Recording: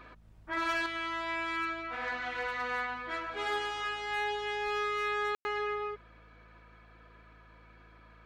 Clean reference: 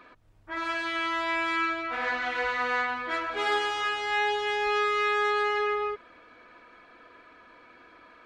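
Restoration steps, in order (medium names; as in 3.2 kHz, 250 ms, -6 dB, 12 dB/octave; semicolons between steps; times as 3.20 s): clip repair -26 dBFS; de-hum 54.5 Hz, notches 4; room tone fill 5.35–5.45 s; trim 0 dB, from 0.86 s +6.5 dB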